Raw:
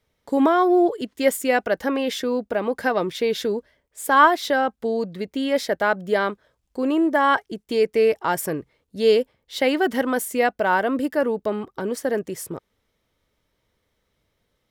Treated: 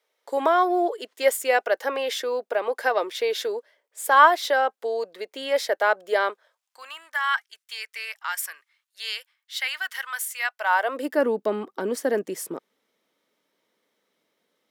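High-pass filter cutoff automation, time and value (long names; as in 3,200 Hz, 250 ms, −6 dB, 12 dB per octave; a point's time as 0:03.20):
high-pass filter 24 dB per octave
0:06.30 440 Hz
0:06.93 1,300 Hz
0:10.38 1,300 Hz
0:10.81 630 Hz
0:11.20 220 Hz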